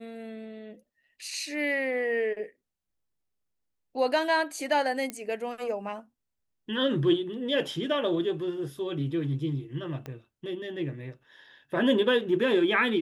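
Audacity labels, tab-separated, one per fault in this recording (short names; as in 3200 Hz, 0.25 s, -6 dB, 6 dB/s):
5.100000	5.100000	pop -18 dBFS
10.060000	10.060000	pop -24 dBFS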